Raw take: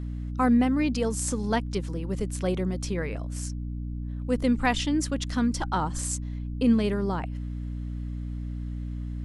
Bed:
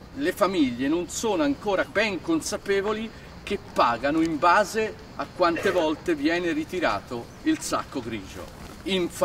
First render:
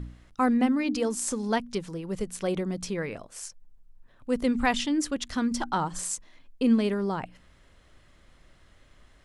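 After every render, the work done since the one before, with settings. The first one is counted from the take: de-hum 60 Hz, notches 5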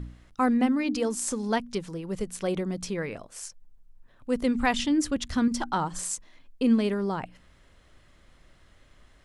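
4.79–5.48 bell 68 Hz +11 dB 2.6 oct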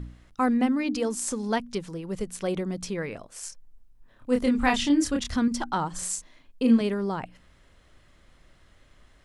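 3.4–5.36 doubler 28 ms -3 dB; 5.98–6.81 doubler 39 ms -5 dB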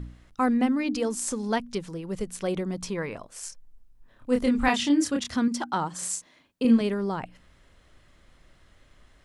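2.73–3.23 bell 1000 Hz +8 dB 0.43 oct; 4.68–6.65 HPF 130 Hz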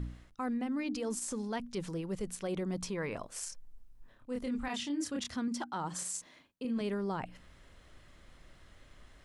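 reverse; compressor 6:1, threshold -32 dBFS, peak gain reduction 16 dB; reverse; limiter -28 dBFS, peak gain reduction 8 dB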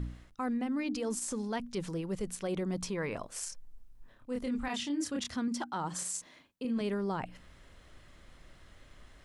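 gain +1.5 dB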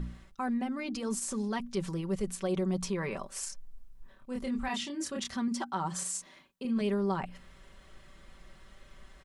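bell 1100 Hz +3 dB 0.25 oct; comb 5.2 ms, depth 58%

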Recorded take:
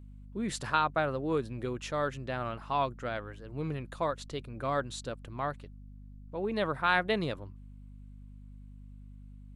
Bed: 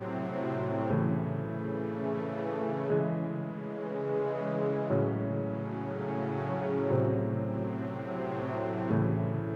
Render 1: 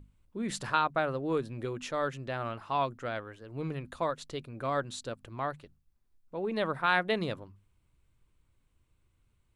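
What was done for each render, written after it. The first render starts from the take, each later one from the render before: notches 50/100/150/200/250 Hz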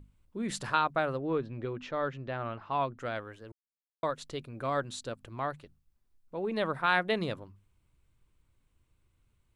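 1.17–2.98 air absorption 200 m; 3.52–4.03 mute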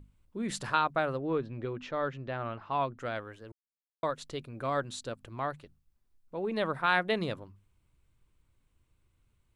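nothing audible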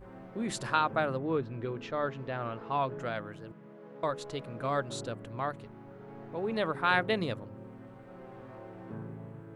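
add bed -14 dB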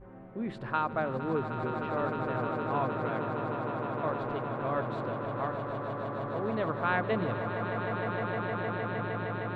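air absorption 470 m; swelling echo 0.154 s, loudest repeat 8, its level -10 dB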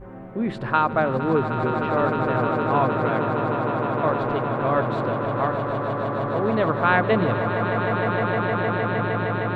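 gain +10 dB

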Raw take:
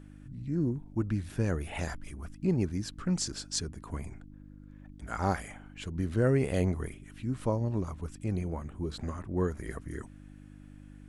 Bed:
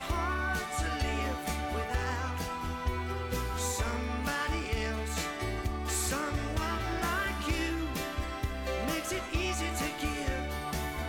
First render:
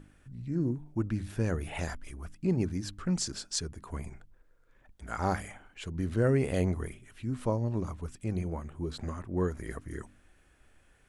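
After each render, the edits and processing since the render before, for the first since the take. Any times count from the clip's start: de-hum 50 Hz, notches 6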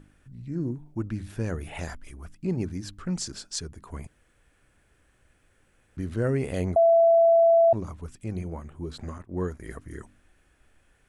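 4.07–5.97 room tone; 6.76–7.73 bleep 668 Hz -14.5 dBFS; 9.18–9.64 expander -38 dBFS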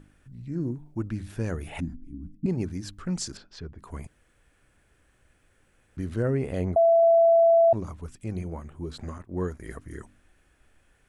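1.8–2.46 EQ curve 100 Hz 0 dB, 290 Hz +14 dB, 450 Hz -27 dB; 3.37–3.79 air absorption 320 m; 6.22–7.03 high shelf 2600 Hz -9 dB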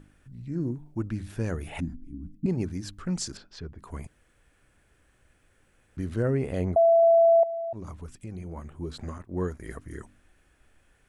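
7.43–8.57 compressor 4:1, threshold -34 dBFS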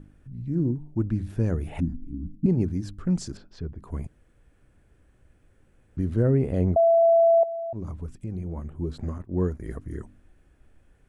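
tilt shelf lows +6.5 dB, about 710 Hz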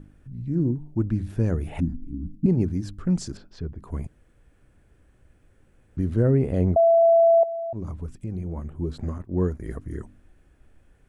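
gain +1.5 dB

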